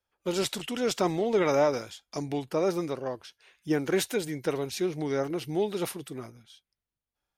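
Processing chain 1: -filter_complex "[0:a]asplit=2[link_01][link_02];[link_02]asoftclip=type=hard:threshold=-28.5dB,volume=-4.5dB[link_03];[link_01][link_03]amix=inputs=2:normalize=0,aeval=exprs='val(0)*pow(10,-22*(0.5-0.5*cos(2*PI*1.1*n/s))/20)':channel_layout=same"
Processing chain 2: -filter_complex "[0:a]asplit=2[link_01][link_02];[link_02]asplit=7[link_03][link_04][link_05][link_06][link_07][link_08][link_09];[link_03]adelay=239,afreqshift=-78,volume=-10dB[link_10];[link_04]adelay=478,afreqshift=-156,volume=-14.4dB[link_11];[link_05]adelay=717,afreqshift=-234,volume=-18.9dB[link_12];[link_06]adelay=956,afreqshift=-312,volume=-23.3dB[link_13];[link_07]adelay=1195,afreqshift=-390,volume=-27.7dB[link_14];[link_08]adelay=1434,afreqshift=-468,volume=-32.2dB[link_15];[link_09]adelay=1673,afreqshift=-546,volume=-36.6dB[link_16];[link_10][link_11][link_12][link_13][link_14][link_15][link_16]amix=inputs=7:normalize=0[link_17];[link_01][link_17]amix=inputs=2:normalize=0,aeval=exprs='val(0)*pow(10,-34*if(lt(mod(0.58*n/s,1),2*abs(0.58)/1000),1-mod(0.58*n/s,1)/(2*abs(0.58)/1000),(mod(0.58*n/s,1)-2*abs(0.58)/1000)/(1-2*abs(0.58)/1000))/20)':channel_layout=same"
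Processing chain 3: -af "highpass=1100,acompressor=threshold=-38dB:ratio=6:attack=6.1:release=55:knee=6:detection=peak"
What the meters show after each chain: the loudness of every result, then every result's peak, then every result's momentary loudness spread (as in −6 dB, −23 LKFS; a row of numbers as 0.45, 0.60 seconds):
−32.0, −38.5, −42.0 LKFS; −14.0, −16.0, −20.0 dBFS; 19, 20, 11 LU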